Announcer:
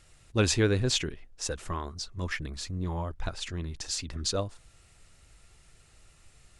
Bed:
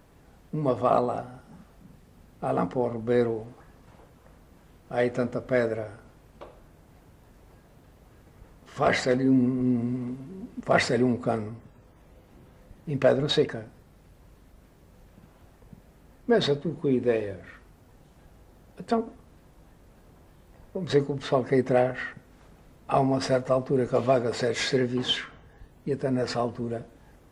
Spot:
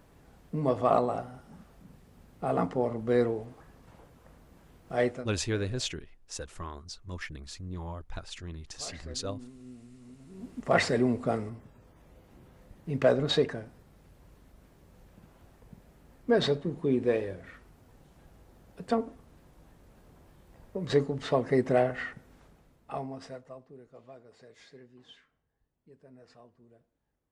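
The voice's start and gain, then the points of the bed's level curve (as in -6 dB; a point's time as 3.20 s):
4.90 s, -6.0 dB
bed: 5.07 s -2 dB
5.34 s -23.5 dB
9.94 s -23.5 dB
10.45 s -2.5 dB
22.32 s -2.5 dB
23.87 s -28 dB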